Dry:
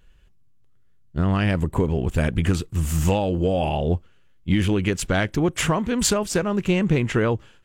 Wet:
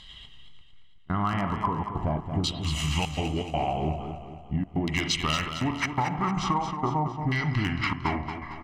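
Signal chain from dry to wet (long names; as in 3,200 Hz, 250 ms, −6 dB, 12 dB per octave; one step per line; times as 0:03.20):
gliding playback speed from 111% → 66%
auto-filter low-pass saw down 0.41 Hz 600–3,900 Hz
reversed playback
upward compression, threshold −31 dBFS
reversed playback
low-shelf EQ 110 Hz +6 dB
on a send at −8.5 dB: convolution reverb RT60 0.65 s, pre-delay 32 ms
on the sum: gate pattern "xxxxx.xx.x" 123 BPM −24 dB
RIAA equalisation recording
gain into a clipping stage and back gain 12.5 dB
notch filter 1,800 Hz, Q 5.6
comb filter 1 ms, depth 72%
downward compressor, threshold −22 dBFS, peak gain reduction 7.5 dB
feedback echo with a swinging delay time 227 ms, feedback 48%, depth 54 cents, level −8.5 dB
level −1 dB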